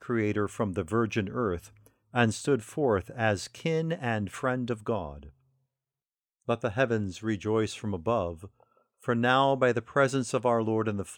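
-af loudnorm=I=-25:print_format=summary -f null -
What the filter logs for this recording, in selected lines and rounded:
Input Integrated:    -28.2 LUFS
Input True Peak:      -8.5 dBTP
Input LRA:             4.9 LU
Input Threshold:     -38.9 LUFS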